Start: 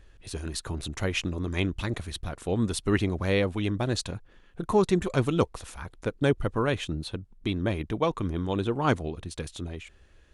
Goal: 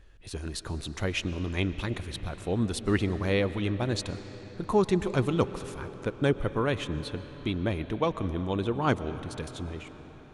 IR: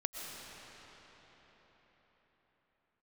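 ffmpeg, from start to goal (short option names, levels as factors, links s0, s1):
-filter_complex "[0:a]asplit=2[s0][s1];[1:a]atrim=start_sample=2205,lowpass=7000[s2];[s1][s2]afir=irnorm=-1:irlink=0,volume=0.335[s3];[s0][s3]amix=inputs=2:normalize=0,volume=0.668"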